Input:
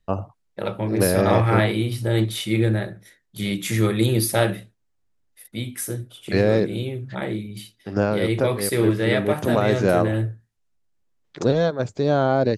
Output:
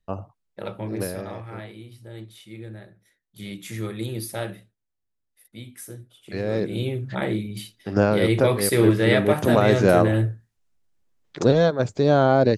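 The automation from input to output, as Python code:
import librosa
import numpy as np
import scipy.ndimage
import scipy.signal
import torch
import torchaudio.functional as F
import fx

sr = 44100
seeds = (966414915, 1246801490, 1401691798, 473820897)

y = fx.gain(x, sr, db=fx.line((0.92, -6.0), (1.36, -19.0), (2.62, -19.0), (3.42, -10.5), (6.37, -10.5), (6.86, 2.0)))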